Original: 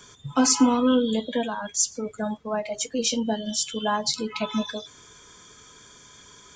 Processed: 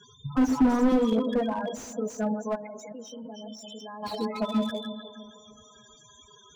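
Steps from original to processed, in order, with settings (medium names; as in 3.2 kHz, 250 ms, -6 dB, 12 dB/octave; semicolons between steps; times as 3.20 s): backward echo that repeats 154 ms, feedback 60%, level -8 dB; 2.55–4.03 s: level held to a coarse grid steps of 20 dB; loudest bins only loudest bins 16; on a send: feedback echo behind a band-pass 130 ms, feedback 79%, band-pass 520 Hz, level -21.5 dB; on the sum: slew-rate limiter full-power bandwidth 42 Hz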